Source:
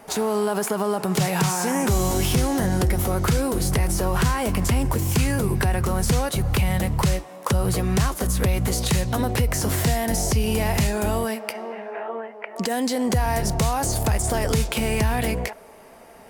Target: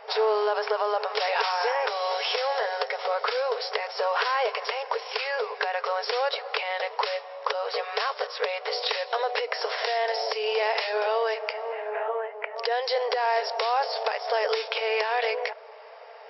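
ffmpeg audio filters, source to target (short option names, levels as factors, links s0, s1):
-filter_complex "[0:a]afftfilt=real='re*between(b*sr/4096,410,5600)':imag='im*between(b*sr/4096,410,5600)':win_size=4096:overlap=0.75,asplit=2[s0][s1];[s1]alimiter=limit=0.141:level=0:latency=1:release=308,volume=1[s2];[s0][s2]amix=inputs=2:normalize=0,volume=0.631"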